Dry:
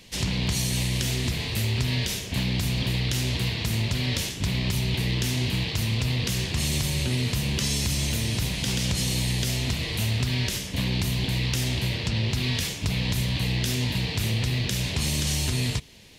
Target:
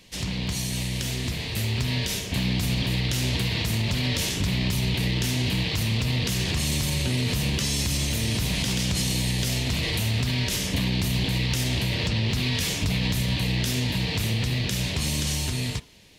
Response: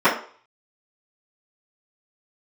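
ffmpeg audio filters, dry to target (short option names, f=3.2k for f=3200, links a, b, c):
-filter_complex "[0:a]asoftclip=type=hard:threshold=-16dB,dynaudnorm=f=470:g=11:m=10.5dB,alimiter=limit=-13.5dB:level=0:latency=1:release=98,asplit=2[a][b];[1:a]atrim=start_sample=2205,asetrate=42336,aresample=44100[c];[b][c]afir=irnorm=-1:irlink=0,volume=-35dB[d];[a][d]amix=inputs=2:normalize=0,volume=-3dB"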